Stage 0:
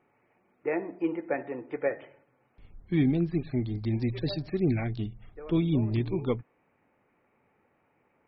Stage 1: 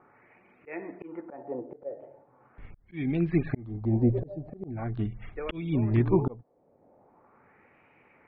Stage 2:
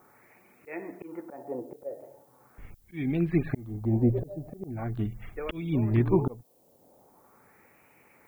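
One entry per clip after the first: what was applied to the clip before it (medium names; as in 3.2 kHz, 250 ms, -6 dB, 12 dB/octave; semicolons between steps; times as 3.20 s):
LFO low-pass sine 0.41 Hz 580–2600 Hz; slow attack 626 ms; trim +7 dB
added noise violet -67 dBFS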